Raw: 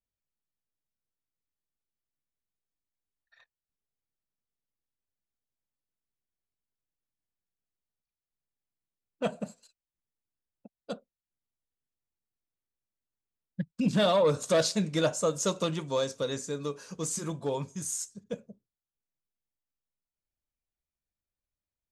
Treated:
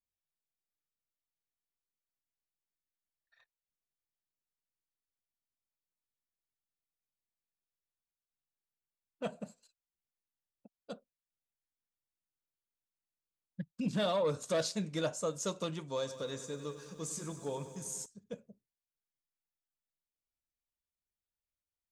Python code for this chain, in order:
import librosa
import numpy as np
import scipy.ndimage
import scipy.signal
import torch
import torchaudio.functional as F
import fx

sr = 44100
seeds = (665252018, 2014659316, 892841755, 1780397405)

y = fx.echo_crushed(x, sr, ms=97, feedback_pct=80, bits=10, wet_db=-13.0, at=(15.91, 18.06))
y = F.gain(torch.from_numpy(y), -7.5).numpy()